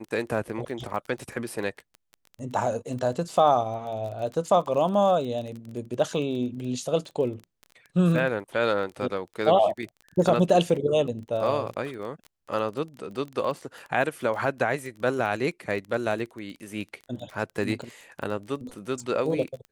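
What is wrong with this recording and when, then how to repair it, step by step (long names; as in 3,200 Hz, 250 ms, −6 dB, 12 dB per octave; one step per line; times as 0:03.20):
surface crackle 21 per second −33 dBFS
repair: click removal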